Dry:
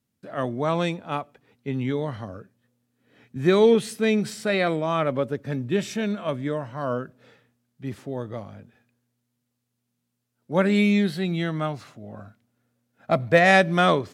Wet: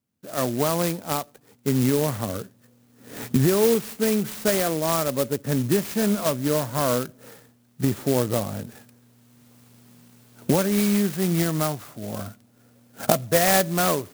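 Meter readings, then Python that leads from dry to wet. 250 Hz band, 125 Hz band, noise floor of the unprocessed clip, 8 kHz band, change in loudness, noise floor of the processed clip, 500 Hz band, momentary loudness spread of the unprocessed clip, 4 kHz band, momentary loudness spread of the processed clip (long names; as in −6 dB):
+1.0 dB, +2.5 dB, −78 dBFS, +14.5 dB, 0.0 dB, −59 dBFS, −0.5 dB, 20 LU, +2.0 dB, 15 LU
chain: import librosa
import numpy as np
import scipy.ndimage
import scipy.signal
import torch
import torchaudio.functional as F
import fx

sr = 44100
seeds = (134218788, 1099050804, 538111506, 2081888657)

y = fx.recorder_agc(x, sr, target_db=-9.0, rise_db_per_s=14.0, max_gain_db=30)
y = fx.low_shelf(y, sr, hz=81.0, db=-6.0)
y = fx.clock_jitter(y, sr, seeds[0], jitter_ms=0.1)
y = y * 10.0 ** (-2.5 / 20.0)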